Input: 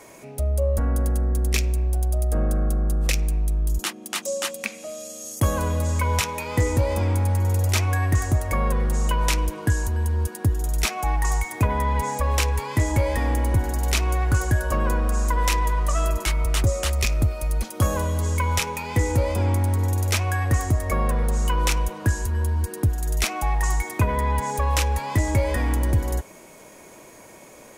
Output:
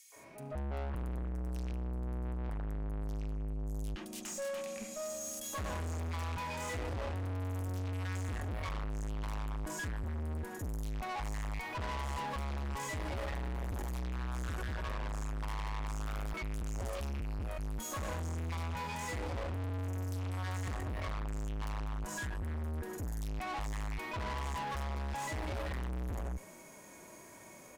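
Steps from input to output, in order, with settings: three bands offset in time highs, mids, lows 0.12/0.16 s, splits 490/3000 Hz; harmonic-percussive split percussive -18 dB; tube stage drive 36 dB, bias 0.5

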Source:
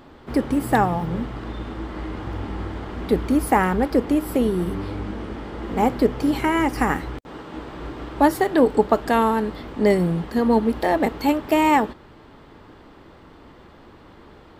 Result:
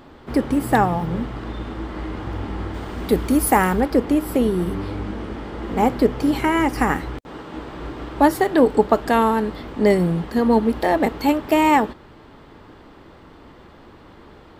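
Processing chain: 2.74–3.81 high shelf 6500 Hz +11.5 dB; gain +1.5 dB

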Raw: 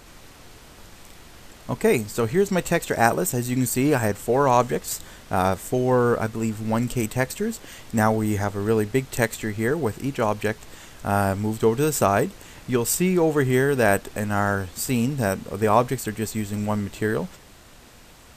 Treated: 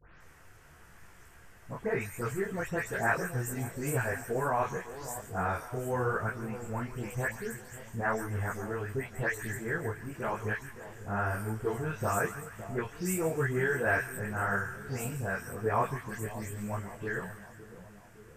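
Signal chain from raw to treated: spectral delay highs late, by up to 0.206 s; fifteen-band EQ 100 Hz +11 dB, 250 Hz -6 dB, 1600 Hz +9 dB, 4000 Hz -11 dB; on a send: split-band echo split 920 Hz, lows 0.561 s, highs 0.142 s, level -13 dB; on the sum: detuned doubles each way 33 cents; gain -7.5 dB

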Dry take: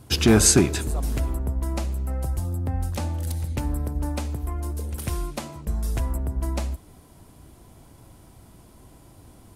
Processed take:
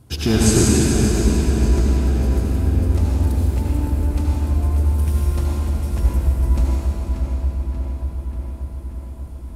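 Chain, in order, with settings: low shelf 280 Hz +6.5 dB; darkening echo 0.585 s, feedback 72%, low-pass 4400 Hz, level -7 dB; reverb RT60 3.6 s, pre-delay 70 ms, DRR -5 dB; gain -6 dB

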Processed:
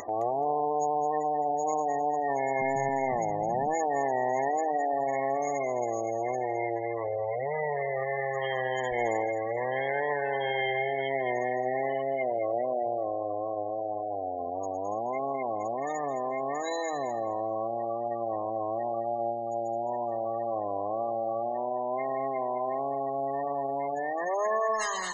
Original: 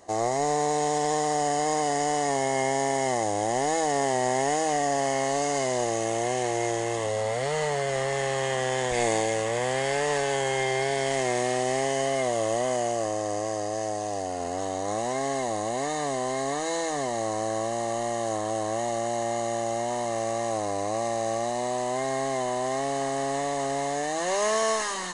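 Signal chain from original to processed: 2.59–3.74 octaver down 1 oct, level +1 dB; spectral gate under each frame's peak -15 dB strong; low shelf 490 Hz -10 dB; upward compressor, threshold -32 dBFS; thinning echo 0.214 s, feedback 17%, high-pass 530 Hz, level -10 dB; gain +1.5 dB

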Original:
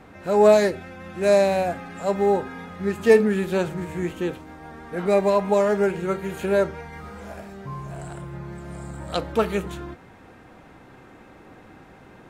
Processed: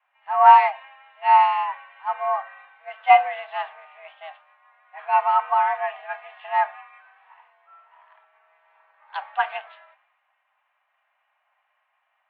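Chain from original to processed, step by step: mistuned SSB +290 Hz 450–2800 Hz; three-band expander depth 70%; gain -1.5 dB

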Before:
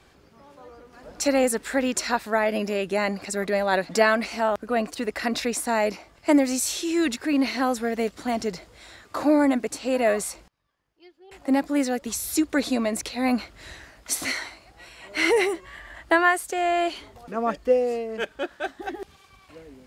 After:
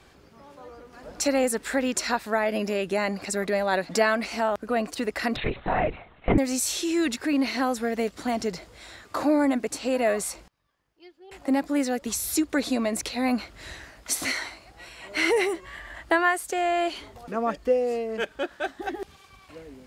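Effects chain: 5.36–6.38 LPC vocoder at 8 kHz whisper; in parallel at +1 dB: compressor, threshold -27 dBFS, peak gain reduction 14 dB; on the sum: gain -5 dB

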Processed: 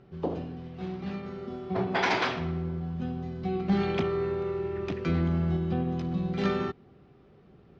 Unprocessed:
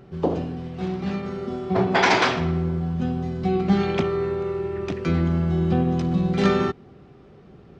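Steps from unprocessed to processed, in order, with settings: high shelf 3800 Hz +9 dB; 3.69–5.57 sample leveller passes 1; air absorption 170 m; gain -8 dB

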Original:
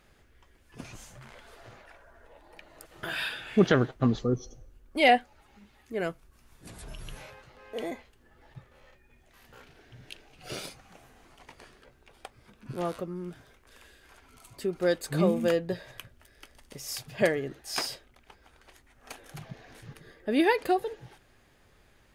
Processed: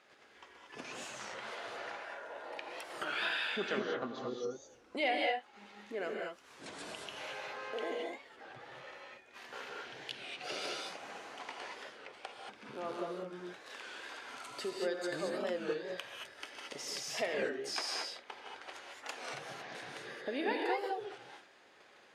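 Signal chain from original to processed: gate -59 dBFS, range -8 dB; compressor 2.5:1, threshold -49 dBFS, peak gain reduction 21.5 dB; 11.51–12.85 tube stage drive 38 dB, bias 0.45; BPF 400–5900 Hz; non-linear reverb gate 0.25 s rising, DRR -0.5 dB; record warp 33 1/3 rpm, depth 160 cents; gain +8 dB

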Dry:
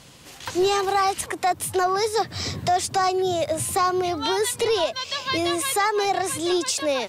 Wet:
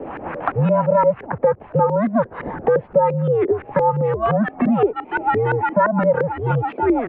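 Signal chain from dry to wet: mistuned SSB -220 Hz 360–2900 Hz; LFO low-pass saw up 5.8 Hz 400–1600 Hz; three-band squash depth 70%; gain +3 dB

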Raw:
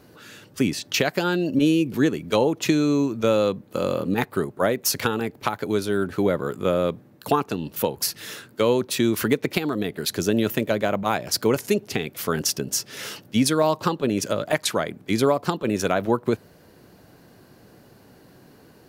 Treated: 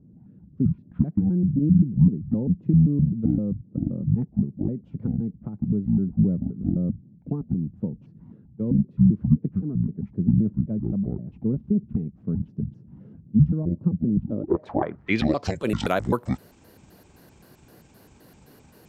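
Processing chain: trilling pitch shifter -10.5 st, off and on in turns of 0.13 s; low-pass sweep 190 Hz -> 13000 Hz, 14.23–15.74; gain -1 dB

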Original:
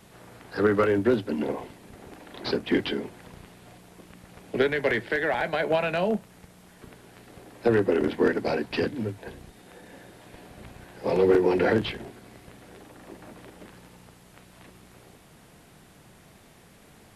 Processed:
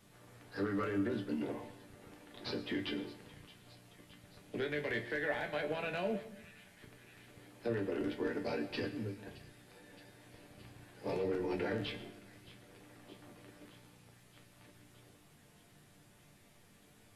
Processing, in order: bell 820 Hz -3.5 dB 2.2 oct; limiter -18.5 dBFS, peak gain reduction 7 dB; resonator bank G2 minor, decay 0.2 s; thin delay 0.62 s, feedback 72%, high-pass 2100 Hz, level -16.5 dB; reverb RT60 0.80 s, pre-delay 65 ms, DRR 12.5 dB; gain +1.5 dB

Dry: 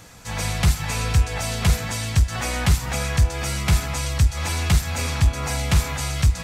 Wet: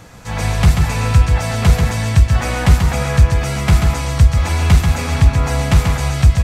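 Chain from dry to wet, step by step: high shelf 2500 Hz -9 dB; on a send: echo 0.137 s -5 dB; on the sum: gain +7 dB

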